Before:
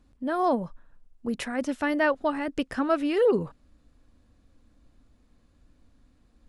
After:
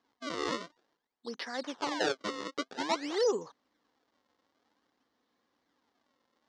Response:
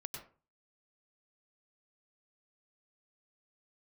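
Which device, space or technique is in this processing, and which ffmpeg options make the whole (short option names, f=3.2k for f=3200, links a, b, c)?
circuit-bent sampling toy: -af "acrusher=samples=31:mix=1:aa=0.000001:lfo=1:lforange=49.6:lforate=0.52,highpass=520,equalizer=f=610:t=q:w=4:g=-7,equalizer=f=1.4k:t=q:w=4:g=-4,equalizer=f=2.5k:t=q:w=4:g=-9,lowpass=f=5.8k:w=0.5412,lowpass=f=5.8k:w=1.3066,volume=-1dB"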